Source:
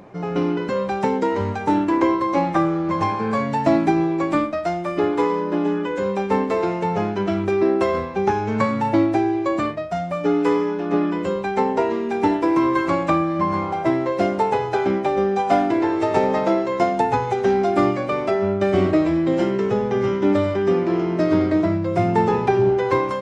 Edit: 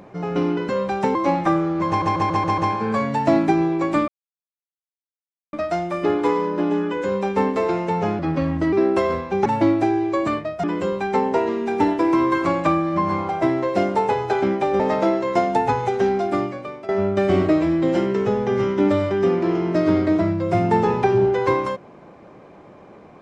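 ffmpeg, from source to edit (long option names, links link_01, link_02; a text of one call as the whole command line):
ffmpeg -i in.wav -filter_complex "[0:a]asplit=14[link_01][link_02][link_03][link_04][link_05][link_06][link_07][link_08][link_09][link_10][link_11][link_12][link_13][link_14];[link_01]atrim=end=1.152[link_15];[link_02]atrim=start=2.238:end=3.112[link_16];[link_03]atrim=start=2.968:end=3.112[link_17];[link_04]atrim=start=2.968:end=3.112[link_18];[link_05]atrim=start=2.968:end=3.112[link_19];[link_06]atrim=start=2.968:end=3.112[link_20];[link_07]atrim=start=2.968:end=4.47,asetpts=PTS-STARTPTS,afade=type=out:start_time=1.498:duration=0.004:curve=hsin,apad=pad_dur=1.45[link_21];[link_08]atrim=start=4.47:end=7.134,asetpts=PTS-STARTPTS,afade=type=in:duration=0.004:curve=hsin[link_22];[link_09]atrim=start=7.13:end=7.57,asetpts=PTS-STARTPTS,asetrate=36162,aresample=44100,atrim=end_sample=23663,asetpts=PTS-STARTPTS[link_23];[link_10]atrim=start=7.566:end=8.302[link_24];[link_11]atrim=start=8.778:end=9.962[link_25];[link_12]atrim=start=11.068:end=15.232[link_26];[link_13]atrim=start=16.238:end=18.33,asetpts=PTS-STARTPTS,afade=type=out:start_time=1.122:duration=0.97:silence=0.141254[link_27];[link_14]atrim=start=18.33,asetpts=PTS-STARTPTS,afade=type=in:duration=0.004:curve=hsin:silence=0.141254[link_28];[link_15][link_16]acrossfade=duration=0.004:curve1=hsin:curve2=hsin[link_29];[link_29][link_17]acrossfade=duration=0.004:curve1=hsin:curve2=hsin[link_30];[link_30][link_18]acrossfade=duration=0.004:curve1=hsin:curve2=hsin[link_31];[link_31][link_19]acrossfade=duration=0.004:curve1=hsin:curve2=hsin[link_32];[link_32][link_20]acrossfade=duration=0.004:curve1=hsin:curve2=hsin[link_33];[link_21][link_22]concat=n=2:v=0:a=1[link_34];[link_33][link_34]acrossfade=duration=0.004:curve1=hsin:curve2=hsin[link_35];[link_35][link_23]acrossfade=duration=0.004:curve1=hsin:curve2=hsin[link_36];[link_36][link_24]acrossfade=duration=0.004:curve1=hsin:curve2=hsin[link_37];[link_37][link_25]acrossfade=duration=0.004:curve1=hsin:curve2=hsin[link_38];[link_38][link_26]acrossfade=duration=0.004:curve1=hsin:curve2=hsin[link_39];[link_27][link_28]concat=n=2:v=0:a=1[link_40];[link_39][link_40]acrossfade=duration=0.004:curve1=hsin:curve2=hsin" out.wav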